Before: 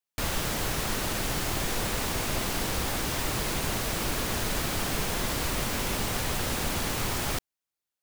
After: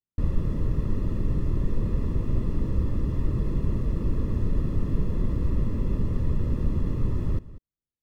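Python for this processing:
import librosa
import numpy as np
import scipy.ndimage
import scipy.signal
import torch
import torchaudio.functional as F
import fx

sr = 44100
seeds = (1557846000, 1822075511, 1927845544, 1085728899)

y = scipy.signal.lfilter(np.full(58, 1.0 / 58), 1.0, x)
y = fx.low_shelf(y, sr, hz=180.0, db=9.0)
y = y + 10.0 ** (-17.5 / 20.0) * np.pad(y, (int(193 * sr / 1000.0), 0))[:len(y)]
y = y * librosa.db_to_amplitude(2.0)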